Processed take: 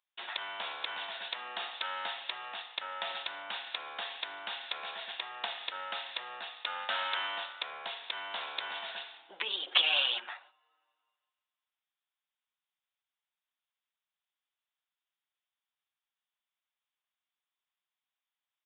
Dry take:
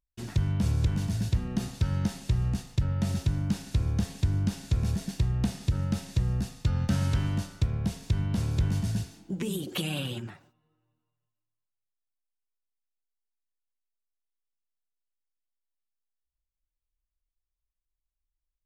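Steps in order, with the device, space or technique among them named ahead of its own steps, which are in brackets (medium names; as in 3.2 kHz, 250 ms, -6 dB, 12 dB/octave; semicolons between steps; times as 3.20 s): musical greeting card (resampled via 8 kHz; high-pass 750 Hz 24 dB/octave; peaking EQ 3.5 kHz +5 dB 0.38 oct); trim +8 dB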